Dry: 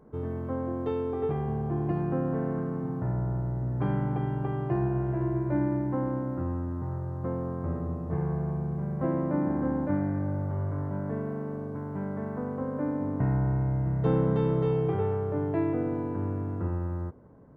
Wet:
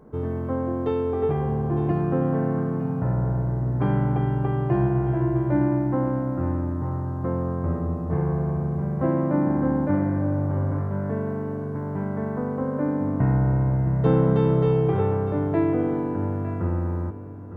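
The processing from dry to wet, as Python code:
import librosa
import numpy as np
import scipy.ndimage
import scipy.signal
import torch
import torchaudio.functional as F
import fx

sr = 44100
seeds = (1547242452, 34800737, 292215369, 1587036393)

y = x + 10.0 ** (-12.5 / 20.0) * np.pad(x, (int(909 * sr / 1000.0), 0))[:len(x)]
y = y * 10.0 ** (5.5 / 20.0)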